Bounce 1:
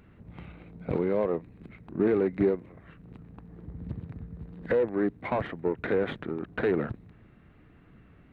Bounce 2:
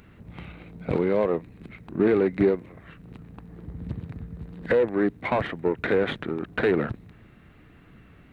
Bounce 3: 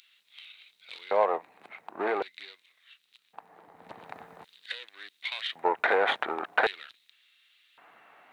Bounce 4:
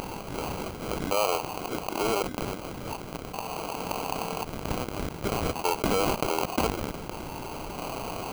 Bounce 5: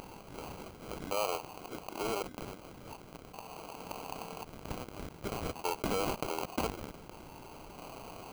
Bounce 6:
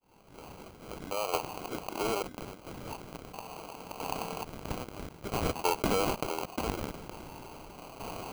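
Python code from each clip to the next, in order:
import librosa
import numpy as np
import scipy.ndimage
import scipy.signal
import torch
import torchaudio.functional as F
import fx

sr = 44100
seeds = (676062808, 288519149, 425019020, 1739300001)

y1 = fx.high_shelf(x, sr, hz=2300.0, db=8.0)
y1 = y1 * librosa.db_to_amplitude(3.5)
y2 = fx.rider(y1, sr, range_db=5, speed_s=0.5)
y2 = fx.filter_lfo_highpass(y2, sr, shape='square', hz=0.45, low_hz=790.0, high_hz=3600.0, q=3.3)
y2 = y2 * librosa.db_to_amplitude(1.5)
y3 = fx.sample_hold(y2, sr, seeds[0], rate_hz=1800.0, jitter_pct=0)
y3 = fx.env_flatten(y3, sr, amount_pct=70)
y3 = y3 * librosa.db_to_amplitude(-3.0)
y4 = fx.upward_expand(y3, sr, threshold_db=-35.0, expansion=1.5)
y4 = y4 * librosa.db_to_amplitude(-6.5)
y5 = fx.fade_in_head(y4, sr, length_s=1.28)
y5 = fx.tremolo_shape(y5, sr, shape='saw_down', hz=0.75, depth_pct=65)
y5 = y5 * librosa.db_to_amplitude(7.5)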